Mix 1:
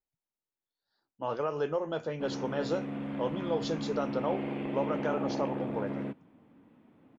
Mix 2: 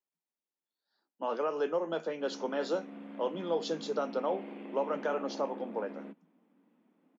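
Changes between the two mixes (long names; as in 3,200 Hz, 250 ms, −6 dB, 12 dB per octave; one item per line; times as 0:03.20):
background −9.0 dB
master: add Butterworth high-pass 170 Hz 96 dB per octave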